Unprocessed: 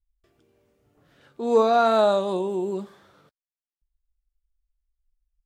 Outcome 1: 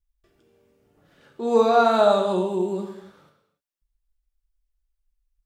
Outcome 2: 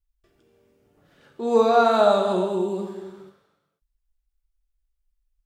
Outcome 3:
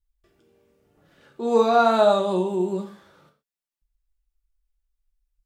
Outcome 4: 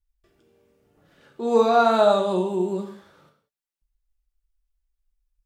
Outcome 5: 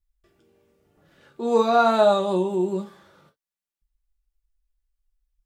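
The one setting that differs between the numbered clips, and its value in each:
gated-style reverb, gate: 330 ms, 530 ms, 150 ms, 220 ms, 80 ms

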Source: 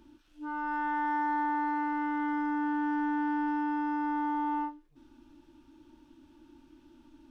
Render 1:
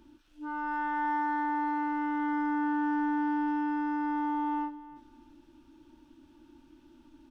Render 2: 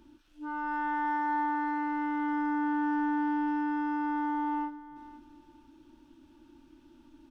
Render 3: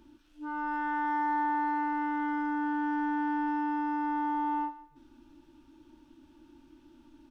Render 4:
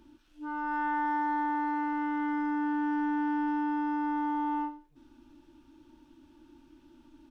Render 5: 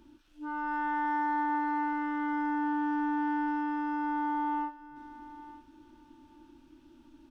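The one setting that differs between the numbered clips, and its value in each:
feedback delay, time: 314 ms, 503 ms, 154 ms, 84 ms, 909 ms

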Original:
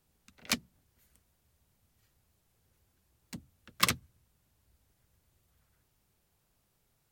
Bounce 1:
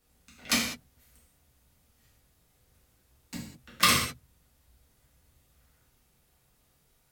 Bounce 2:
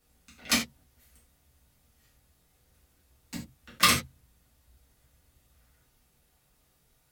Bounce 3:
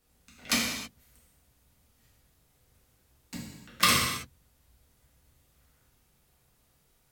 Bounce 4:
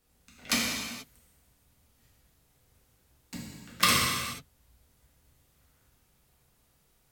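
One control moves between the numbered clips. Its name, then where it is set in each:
gated-style reverb, gate: 230 ms, 120 ms, 350 ms, 510 ms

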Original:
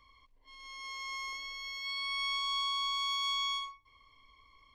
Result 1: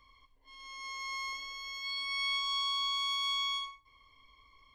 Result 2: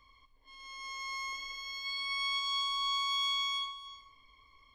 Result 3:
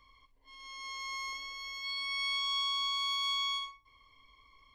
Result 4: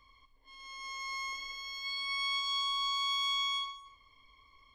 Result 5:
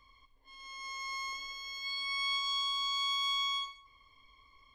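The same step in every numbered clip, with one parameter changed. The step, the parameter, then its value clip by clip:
gated-style reverb, gate: 120 ms, 460 ms, 80 ms, 290 ms, 190 ms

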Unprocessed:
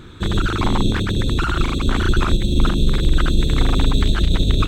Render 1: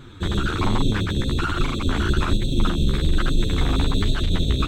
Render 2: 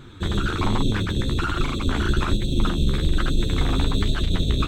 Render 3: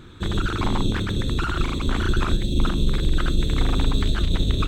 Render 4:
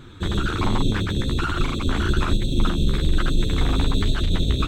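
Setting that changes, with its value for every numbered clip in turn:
flange, regen: +1%, +37%, -85%, -21%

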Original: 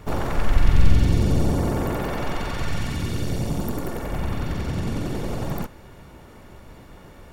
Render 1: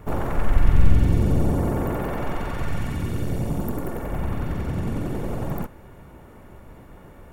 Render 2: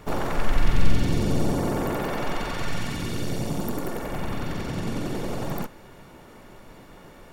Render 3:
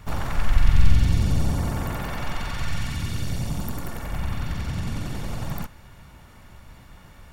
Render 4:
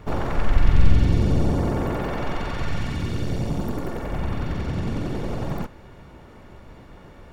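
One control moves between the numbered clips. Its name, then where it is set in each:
peaking EQ, frequency: 4.7 kHz, 63 Hz, 400 Hz, 13 kHz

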